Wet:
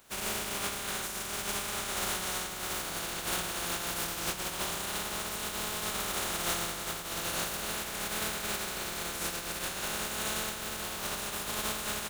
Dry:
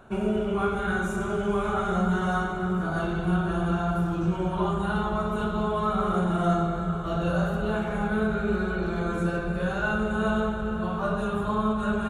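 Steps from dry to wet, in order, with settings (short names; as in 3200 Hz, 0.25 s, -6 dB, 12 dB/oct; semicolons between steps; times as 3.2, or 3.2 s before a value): spectral contrast lowered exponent 0.2; notches 60/120/180 Hz; gain -8.5 dB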